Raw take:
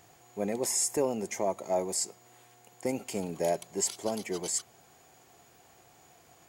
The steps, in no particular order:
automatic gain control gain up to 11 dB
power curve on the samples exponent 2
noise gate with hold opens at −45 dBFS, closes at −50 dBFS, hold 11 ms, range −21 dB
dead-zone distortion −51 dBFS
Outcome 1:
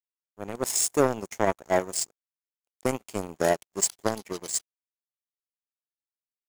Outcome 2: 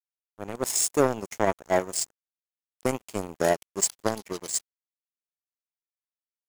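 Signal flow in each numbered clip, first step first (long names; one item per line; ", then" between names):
dead-zone distortion, then automatic gain control, then noise gate with hold, then power curve on the samples
automatic gain control, then power curve on the samples, then noise gate with hold, then dead-zone distortion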